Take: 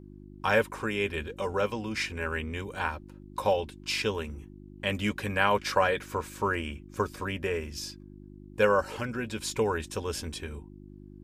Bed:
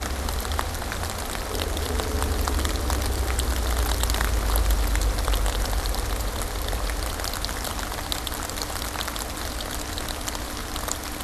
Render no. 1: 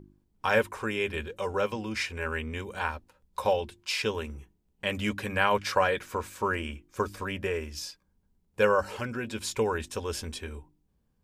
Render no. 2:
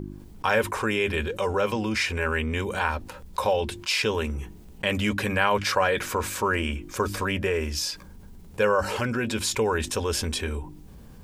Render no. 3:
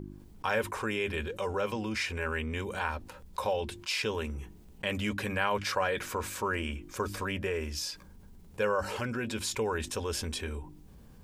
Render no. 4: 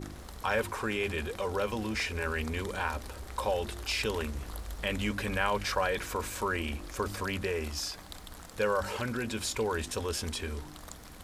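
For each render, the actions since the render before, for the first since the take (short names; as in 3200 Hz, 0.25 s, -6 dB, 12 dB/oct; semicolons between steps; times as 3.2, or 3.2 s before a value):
de-hum 50 Hz, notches 7
fast leveller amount 50%
gain -7 dB
add bed -18.5 dB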